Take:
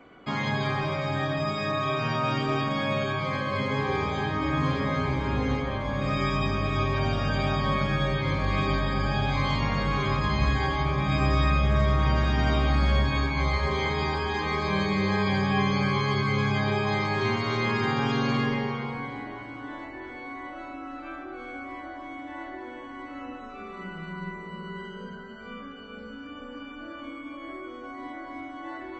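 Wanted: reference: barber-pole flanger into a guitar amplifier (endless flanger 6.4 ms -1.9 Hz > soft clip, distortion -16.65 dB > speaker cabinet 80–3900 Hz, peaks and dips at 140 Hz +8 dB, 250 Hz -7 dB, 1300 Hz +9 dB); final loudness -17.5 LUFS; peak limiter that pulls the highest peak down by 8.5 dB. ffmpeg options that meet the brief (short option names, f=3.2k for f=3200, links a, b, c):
-filter_complex "[0:a]alimiter=limit=-19.5dB:level=0:latency=1,asplit=2[a][b];[b]adelay=6.4,afreqshift=-1.9[c];[a][c]amix=inputs=2:normalize=1,asoftclip=threshold=-26dB,highpass=80,equalizer=f=140:t=q:w=4:g=8,equalizer=f=250:t=q:w=4:g=-7,equalizer=f=1.3k:t=q:w=4:g=9,lowpass=f=3.9k:w=0.5412,lowpass=f=3.9k:w=1.3066,volume=15dB"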